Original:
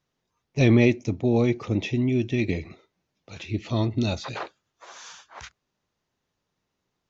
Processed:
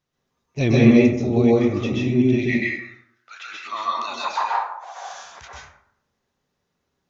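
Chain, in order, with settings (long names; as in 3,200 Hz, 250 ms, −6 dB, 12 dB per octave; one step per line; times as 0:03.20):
0:02.43–0:05.03: high-pass with resonance 2,000 Hz → 710 Hz, resonance Q 8.7
dense smooth reverb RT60 0.71 s, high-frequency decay 0.5×, pre-delay 115 ms, DRR −4.5 dB
level −2 dB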